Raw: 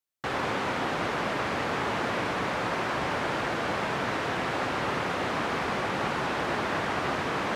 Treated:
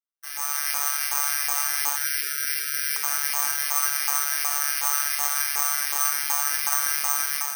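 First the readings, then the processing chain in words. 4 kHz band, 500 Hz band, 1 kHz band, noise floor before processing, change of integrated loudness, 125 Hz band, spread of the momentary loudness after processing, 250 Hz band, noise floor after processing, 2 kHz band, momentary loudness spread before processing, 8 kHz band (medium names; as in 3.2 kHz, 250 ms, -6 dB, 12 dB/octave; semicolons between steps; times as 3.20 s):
+5.5 dB, -19.0 dB, -3.5 dB, -31 dBFS, +6.5 dB, under -35 dB, 3 LU, under -30 dB, -32 dBFS, +0.5 dB, 0 LU, +23.5 dB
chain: comb filter that takes the minimum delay 2.5 ms; peaking EQ 120 Hz +4.5 dB 1.2 oct; level rider gain up to 9 dB; chorus 2.1 Hz, delay 18.5 ms, depth 4.1 ms; spectral selection erased 1.96–3.04 s, 510–1300 Hz; robot voice 144 Hz; LFO high-pass saw up 2.7 Hz 940–2100 Hz; gated-style reverb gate 110 ms flat, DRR 8 dB; careless resampling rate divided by 6×, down filtered, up zero stuff; trim -7.5 dB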